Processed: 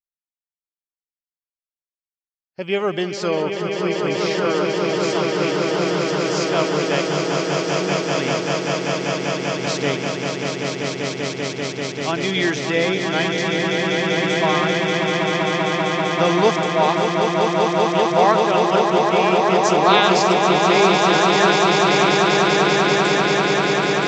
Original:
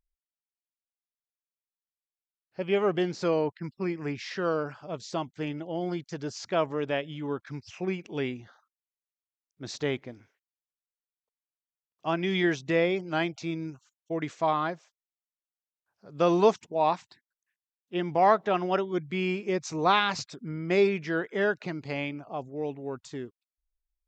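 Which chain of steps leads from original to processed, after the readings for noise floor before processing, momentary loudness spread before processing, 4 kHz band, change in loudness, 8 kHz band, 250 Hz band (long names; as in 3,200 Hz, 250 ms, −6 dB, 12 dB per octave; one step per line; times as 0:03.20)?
below −85 dBFS, 13 LU, +17.0 dB, +11.0 dB, can't be measured, +10.5 dB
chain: downward expander −53 dBFS
high-shelf EQ 2,300 Hz +9 dB
on a send: echo that builds up and dies away 195 ms, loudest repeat 8, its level −5 dB
on the sum: level +3.5 dB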